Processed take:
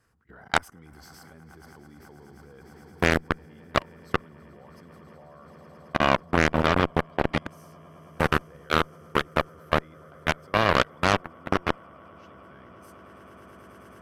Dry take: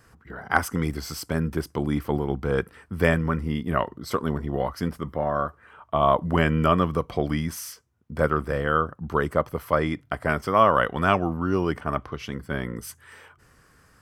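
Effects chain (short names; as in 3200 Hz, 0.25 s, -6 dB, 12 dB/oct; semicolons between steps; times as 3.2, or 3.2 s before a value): swelling echo 0.108 s, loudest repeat 8, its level -14 dB; level quantiser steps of 21 dB; added harmonics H 3 -24 dB, 7 -16 dB, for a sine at -6.5 dBFS; gain +4 dB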